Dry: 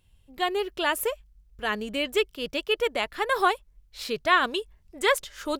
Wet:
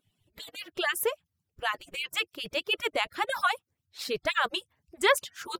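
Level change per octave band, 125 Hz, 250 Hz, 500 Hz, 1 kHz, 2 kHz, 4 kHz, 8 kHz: n/a, -8.5 dB, -5.0 dB, -4.5 dB, -2.0 dB, -1.5 dB, -0.5 dB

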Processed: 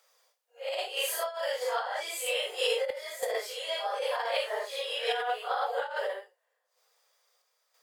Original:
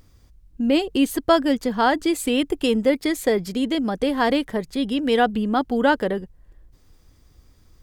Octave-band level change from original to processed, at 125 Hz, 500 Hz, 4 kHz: under -40 dB, -9.5 dB, -3.5 dB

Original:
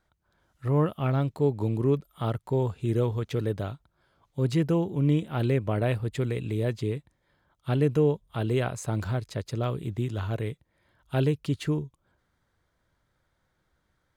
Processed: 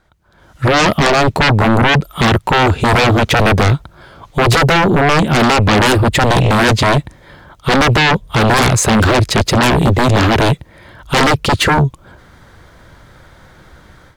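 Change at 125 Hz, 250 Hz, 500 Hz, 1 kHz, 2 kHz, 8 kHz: +13.0, +14.0, +13.5, +25.0, +28.0, +26.0 dB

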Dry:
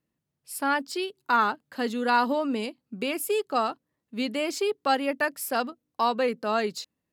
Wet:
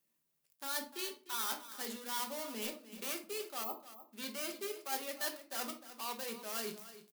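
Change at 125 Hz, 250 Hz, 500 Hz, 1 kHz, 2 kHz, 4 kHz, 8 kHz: n/a, -17.5 dB, -16.5 dB, -18.0 dB, -15.0 dB, -7.5 dB, -3.0 dB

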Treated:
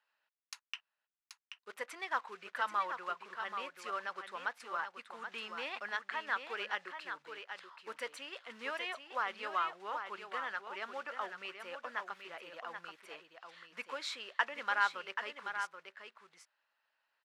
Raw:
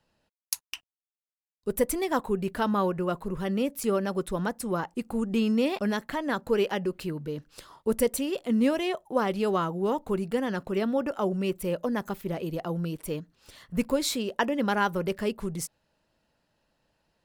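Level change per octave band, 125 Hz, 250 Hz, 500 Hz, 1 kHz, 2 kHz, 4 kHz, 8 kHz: under -35 dB, -31.0 dB, -19.5 dB, -5.0 dB, -1.0 dB, -6.5 dB, -18.5 dB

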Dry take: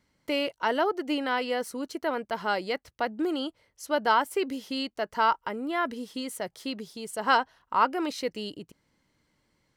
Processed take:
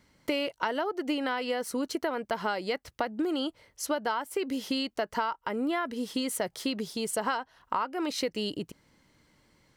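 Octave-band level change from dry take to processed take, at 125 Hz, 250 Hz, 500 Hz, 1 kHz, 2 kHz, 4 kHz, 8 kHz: n/a, +0.5 dB, -2.0 dB, -5.5 dB, -4.0 dB, -0.5 dB, +5.0 dB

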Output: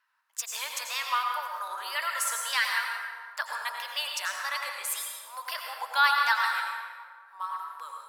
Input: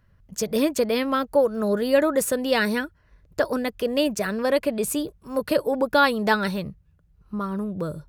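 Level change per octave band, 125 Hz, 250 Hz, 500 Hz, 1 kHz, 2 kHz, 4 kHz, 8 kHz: under -40 dB, under -40 dB, -26.5 dB, -1.0 dB, 0.0 dB, 0.0 dB, -0.5 dB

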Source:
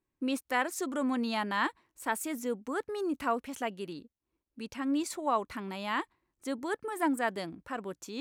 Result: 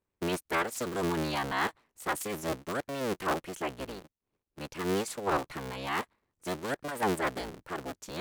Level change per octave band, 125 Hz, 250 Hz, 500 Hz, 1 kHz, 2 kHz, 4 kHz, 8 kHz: +10.5, -3.0, +2.0, 0.0, +0.5, +2.0, +1.5 dB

